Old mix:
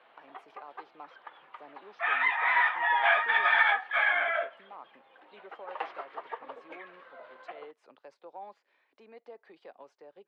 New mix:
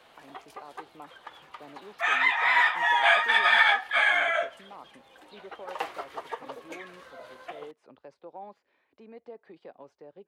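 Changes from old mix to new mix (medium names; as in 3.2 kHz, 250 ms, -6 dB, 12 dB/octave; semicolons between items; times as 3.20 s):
background: remove distance through air 470 m; master: remove frequency weighting A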